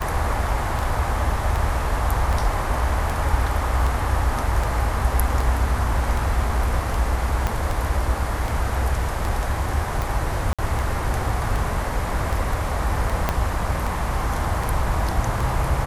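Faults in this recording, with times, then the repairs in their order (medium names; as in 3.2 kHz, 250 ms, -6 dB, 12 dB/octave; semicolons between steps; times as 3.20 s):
tick 78 rpm
7.47 s: pop -9 dBFS
10.53–10.59 s: dropout 56 ms
13.29 s: pop -6 dBFS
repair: de-click; interpolate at 10.53 s, 56 ms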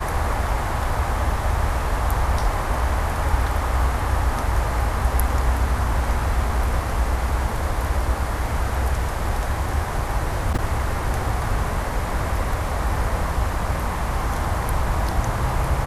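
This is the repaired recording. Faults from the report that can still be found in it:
7.47 s: pop
13.29 s: pop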